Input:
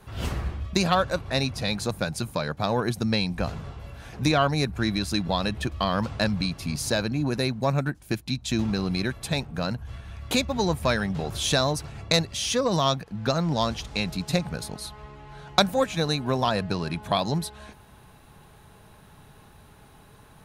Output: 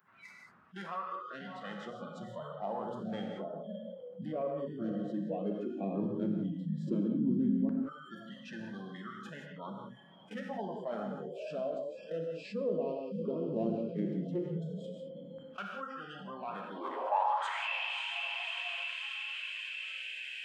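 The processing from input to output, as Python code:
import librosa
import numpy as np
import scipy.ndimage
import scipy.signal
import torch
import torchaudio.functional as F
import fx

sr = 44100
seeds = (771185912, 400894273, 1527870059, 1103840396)

p1 = fx.low_shelf(x, sr, hz=320.0, db=7.0)
p2 = p1 + fx.echo_diffused(p1, sr, ms=594, feedback_pct=68, wet_db=-12.5, dry=0)
p3 = fx.rider(p2, sr, range_db=4, speed_s=2.0)
p4 = 10.0 ** (-16.0 / 20.0) * np.tanh(p3 / 10.0 ** (-16.0 / 20.0))
p5 = fx.filter_sweep_bandpass(p4, sr, from_hz=220.0, to_hz=3200.0, start_s=16.63, end_s=17.64, q=5.9)
p6 = fx.formant_shift(p5, sr, semitones=-4)
p7 = fx.noise_reduce_blind(p6, sr, reduce_db=26)
p8 = fx.filter_lfo_highpass(p7, sr, shape='saw_down', hz=0.13, low_hz=260.0, high_hz=1500.0, q=4.2)
p9 = fx.rev_gated(p8, sr, seeds[0], gate_ms=210, shape='flat', drr_db=3.0)
y = fx.env_flatten(p9, sr, amount_pct=50)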